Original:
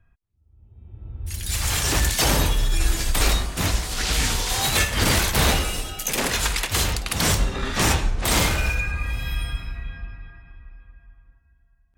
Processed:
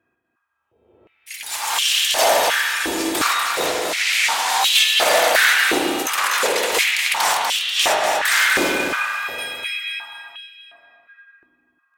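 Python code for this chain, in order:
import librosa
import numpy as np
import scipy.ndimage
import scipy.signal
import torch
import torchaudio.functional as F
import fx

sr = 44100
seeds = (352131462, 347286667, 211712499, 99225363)

y = fx.tilt_shelf(x, sr, db=-8.0, hz=1300.0, at=(9.38, 10.03))
y = fx.echo_feedback(y, sr, ms=244, feedback_pct=41, wet_db=-5.0)
y = fx.rev_spring(y, sr, rt60_s=1.8, pass_ms=(40, 52), chirp_ms=20, drr_db=1.0)
y = fx.filter_held_highpass(y, sr, hz=2.8, low_hz=340.0, high_hz=3000.0)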